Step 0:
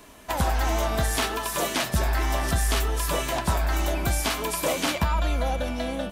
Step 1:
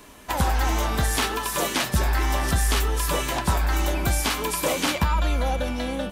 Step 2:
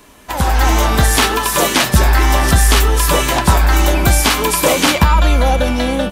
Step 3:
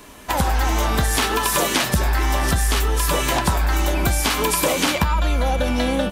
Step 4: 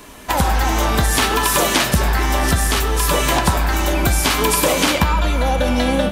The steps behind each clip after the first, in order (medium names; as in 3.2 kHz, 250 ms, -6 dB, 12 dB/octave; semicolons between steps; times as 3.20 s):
band-stop 660 Hz, Q 12; trim +2 dB
level rider gain up to 9.5 dB; trim +2.5 dB
compression 6:1, threshold -18 dBFS, peak gain reduction 11.5 dB; trim +1.5 dB
algorithmic reverb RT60 2.5 s, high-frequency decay 0.6×, pre-delay 0 ms, DRR 10 dB; trim +3 dB